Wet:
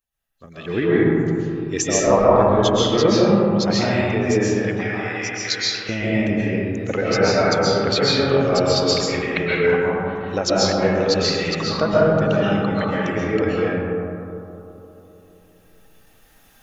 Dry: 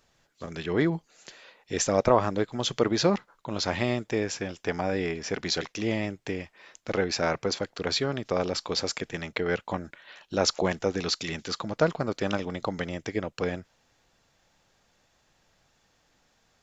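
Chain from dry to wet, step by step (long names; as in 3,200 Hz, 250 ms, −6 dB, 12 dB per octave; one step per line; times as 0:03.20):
spectral dynamics exaggerated over time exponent 1.5
camcorder AGC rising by 7.3 dB per second
0:04.53–0:05.89: high-pass filter 1,300 Hz 12 dB per octave
bucket-brigade delay 202 ms, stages 2,048, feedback 71%, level −12 dB
convolution reverb RT60 2.4 s, pre-delay 95 ms, DRR −7.5 dB
level +2 dB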